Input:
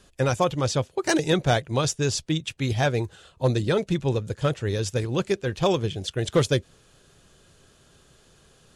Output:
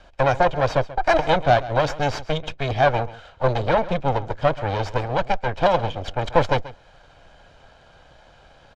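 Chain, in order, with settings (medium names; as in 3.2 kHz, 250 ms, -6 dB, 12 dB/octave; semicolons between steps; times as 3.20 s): comb filter that takes the minimum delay 1.3 ms; tilt EQ -4 dB/octave; in parallel at +0.5 dB: compression, threshold -23 dBFS, peak gain reduction 18 dB; on the sum: wow and flutter 20 cents; three-band isolator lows -22 dB, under 450 Hz, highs -22 dB, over 5.8 kHz; on a send: delay 135 ms -17 dB; on the sum: trim +6 dB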